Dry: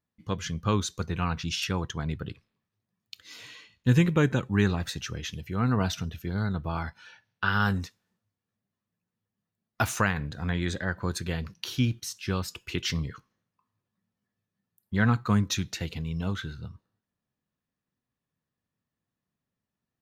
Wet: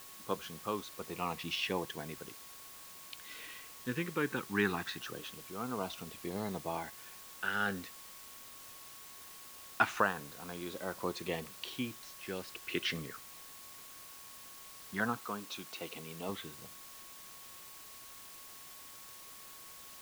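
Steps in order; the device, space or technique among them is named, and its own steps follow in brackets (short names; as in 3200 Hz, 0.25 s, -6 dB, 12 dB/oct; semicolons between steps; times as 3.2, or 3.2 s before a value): shortwave radio (BPF 350–2700 Hz; tremolo 0.62 Hz, depth 59%; LFO notch saw down 0.2 Hz 520–2200 Hz; whine 1100 Hz -62 dBFS; white noise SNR 11 dB); 15.18–16.29 low shelf 160 Hz -12 dB; gain +1.5 dB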